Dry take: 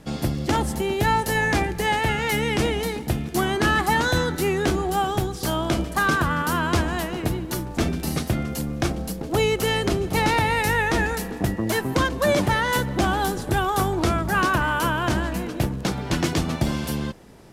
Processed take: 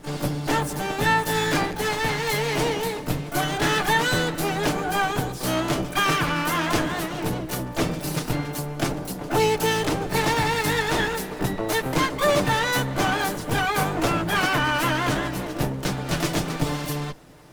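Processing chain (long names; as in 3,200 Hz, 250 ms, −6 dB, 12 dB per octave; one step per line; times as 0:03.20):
lower of the sound and its delayed copy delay 6.7 ms
pitch-shifted copies added +12 semitones −7 dB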